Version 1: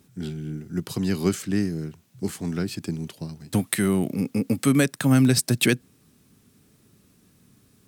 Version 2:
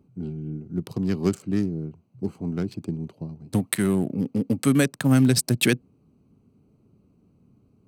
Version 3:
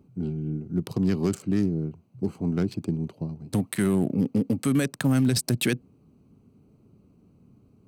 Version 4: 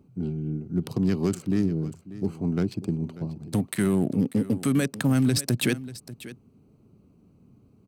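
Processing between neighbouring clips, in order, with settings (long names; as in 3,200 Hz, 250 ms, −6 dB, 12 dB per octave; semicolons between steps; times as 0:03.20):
adaptive Wiener filter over 25 samples
brickwall limiter −17 dBFS, peak gain reduction 11.5 dB; level +2.5 dB
single-tap delay 590 ms −16 dB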